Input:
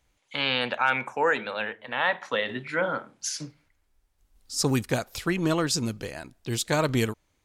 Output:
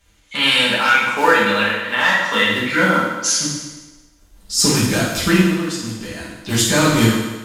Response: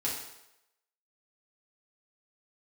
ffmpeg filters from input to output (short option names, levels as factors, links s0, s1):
-filter_complex "[0:a]equalizer=f=590:t=o:w=1.3:g=-9,asplit=2[s0][s1];[s1]alimiter=limit=0.0708:level=0:latency=1:release=237,volume=0.841[s2];[s0][s2]amix=inputs=2:normalize=0,asettb=1/sr,asplit=3[s3][s4][s5];[s3]atrim=end=5.414[s6];[s4]atrim=start=5.41:end=6.49,asetpts=PTS-STARTPTS,afade=t=in:d=0.004:c=qsin,afade=t=out:st=1.076:d=0.004:c=qsin,acompressor=threshold=0.0158:ratio=6[s7];[s5]atrim=start=6.486[s8];[s6][s7]acrossfade=d=0.004:c1=hsin:c2=qsin[s9];[s9][s8]acrossfade=d=0.004:c1=qsin:c2=hsin,acrossover=split=810[s10][s11];[s10]acrusher=bits=3:mode=log:mix=0:aa=0.000001[s12];[s12][s11]amix=inputs=2:normalize=0,flanger=delay=1.6:depth=6.1:regen=-79:speed=0.95:shape=triangular,volume=10.6,asoftclip=hard,volume=0.0944[s13];[1:a]atrim=start_sample=2205,asetrate=31311,aresample=44100[s14];[s13][s14]afir=irnorm=-1:irlink=0,volume=2.51"